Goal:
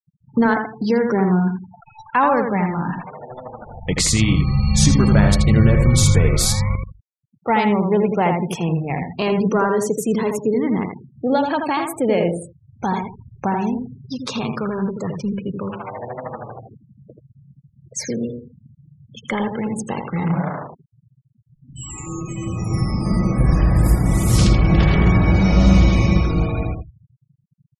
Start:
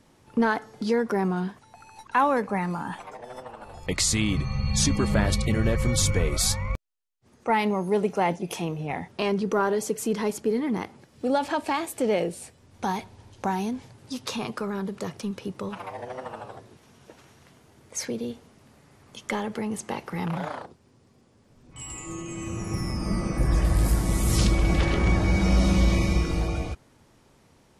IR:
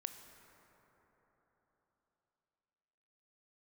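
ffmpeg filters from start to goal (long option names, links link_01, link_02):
-filter_complex "[0:a]equalizer=frequency=140:width=1.7:gain=7.5,asplit=2[link_01][link_02];[link_02]adelay=82,lowpass=frequency=4100:poles=1,volume=-4.5dB,asplit=2[link_03][link_04];[link_04]adelay=82,lowpass=frequency=4100:poles=1,volume=0.27,asplit=2[link_05][link_06];[link_06]adelay=82,lowpass=frequency=4100:poles=1,volume=0.27,asplit=2[link_07][link_08];[link_08]adelay=82,lowpass=frequency=4100:poles=1,volume=0.27[link_09];[link_01][link_03][link_05][link_07][link_09]amix=inputs=5:normalize=0,afftfilt=real='re*gte(hypot(re,im),0.0178)':imag='im*gte(hypot(re,im),0.0178)':win_size=1024:overlap=0.75,volume=4.5dB"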